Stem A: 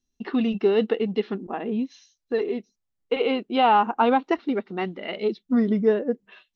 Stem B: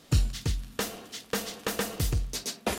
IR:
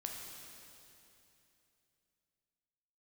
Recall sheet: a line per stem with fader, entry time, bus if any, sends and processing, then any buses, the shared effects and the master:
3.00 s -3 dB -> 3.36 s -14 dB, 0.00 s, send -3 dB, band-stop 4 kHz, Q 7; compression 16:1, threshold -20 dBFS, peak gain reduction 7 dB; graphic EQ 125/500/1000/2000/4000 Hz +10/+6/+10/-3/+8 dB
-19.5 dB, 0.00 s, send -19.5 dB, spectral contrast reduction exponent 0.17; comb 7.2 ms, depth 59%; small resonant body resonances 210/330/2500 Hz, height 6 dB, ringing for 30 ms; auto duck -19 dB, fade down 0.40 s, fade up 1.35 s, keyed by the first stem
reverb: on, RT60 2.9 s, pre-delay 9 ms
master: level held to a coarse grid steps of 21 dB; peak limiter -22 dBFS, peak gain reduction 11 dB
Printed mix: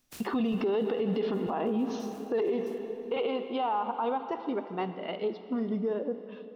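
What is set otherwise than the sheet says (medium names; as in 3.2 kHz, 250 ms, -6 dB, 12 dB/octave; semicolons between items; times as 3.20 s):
stem B: missing comb 7.2 ms, depth 59%; master: missing level held to a coarse grid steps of 21 dB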